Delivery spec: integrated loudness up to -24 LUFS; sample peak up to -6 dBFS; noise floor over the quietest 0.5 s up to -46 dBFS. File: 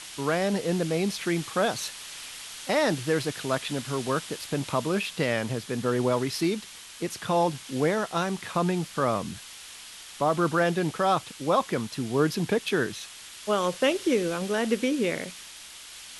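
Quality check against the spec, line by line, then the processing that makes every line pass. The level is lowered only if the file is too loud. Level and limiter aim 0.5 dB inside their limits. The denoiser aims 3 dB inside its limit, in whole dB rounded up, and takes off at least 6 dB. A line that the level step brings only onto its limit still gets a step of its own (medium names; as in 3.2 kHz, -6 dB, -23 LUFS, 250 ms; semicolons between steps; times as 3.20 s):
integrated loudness -27.5 LUFS: pass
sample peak -11.5 dBFS: pass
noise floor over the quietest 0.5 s -45 dBFS: fail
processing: noise reduction 6 dB, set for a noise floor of -45 dBFS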